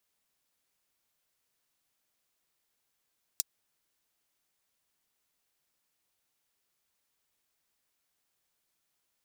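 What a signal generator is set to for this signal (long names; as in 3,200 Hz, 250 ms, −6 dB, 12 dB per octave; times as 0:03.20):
closed synth hi-hat, high-pass 5,200 Hz, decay 0.03 s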